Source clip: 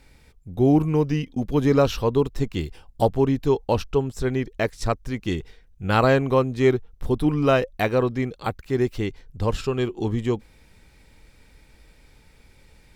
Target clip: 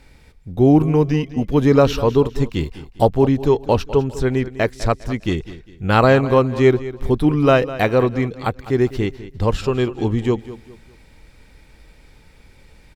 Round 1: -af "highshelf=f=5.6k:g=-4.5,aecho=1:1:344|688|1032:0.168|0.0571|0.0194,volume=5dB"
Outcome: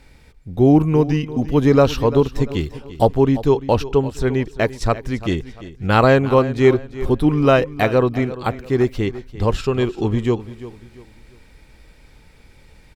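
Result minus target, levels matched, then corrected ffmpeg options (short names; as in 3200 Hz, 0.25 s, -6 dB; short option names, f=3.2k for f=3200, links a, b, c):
echo 0.142 s late
-af "highshelf=f=5.6k:g=-4.5,aecho=1:1:202|404|606:0.168|0.0571|0.0194,volume=5dB"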